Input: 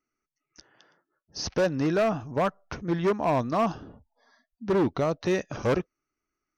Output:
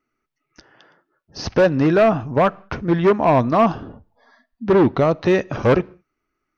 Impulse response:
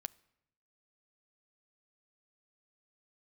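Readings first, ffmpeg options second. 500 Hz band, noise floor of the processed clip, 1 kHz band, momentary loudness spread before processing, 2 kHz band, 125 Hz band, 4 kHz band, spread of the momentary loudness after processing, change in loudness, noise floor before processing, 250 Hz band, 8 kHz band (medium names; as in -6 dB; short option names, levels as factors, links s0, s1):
+9.5 dB, -78 dBFS, +9.5 dB, 12 LU, +9.0 dB, +9.5 dB, +4.5 dB, 12 LU, +9.5 dB, under -85 dBFS, +9.0 dB, no reading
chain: -filter_complex "[0:a]asplit=2[s0][s1];[1:a]atrim=start_sample=2205,afade=t=out:st=0.26:d=0.01,atrim=end_sample=11907,lowpass=4100[s2];[s1][s2]afir=irnorm=-1:irlink=0,volume=2.82[s3];[s0][s3]amix=inputs=2:normalize=0"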